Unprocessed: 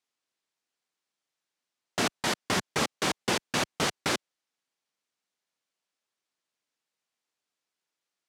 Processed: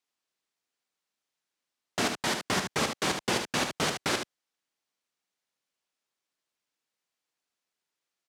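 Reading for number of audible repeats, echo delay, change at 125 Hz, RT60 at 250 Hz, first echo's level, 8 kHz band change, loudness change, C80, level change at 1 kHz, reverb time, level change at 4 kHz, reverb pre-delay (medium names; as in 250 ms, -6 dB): 1, 74 ms, -0.5 dB, no reverb, -6.5 dB, 0.0 dB, 0.0 dB, no reverb, 0.0 dB, no reverb, 0.0 dB, no reverb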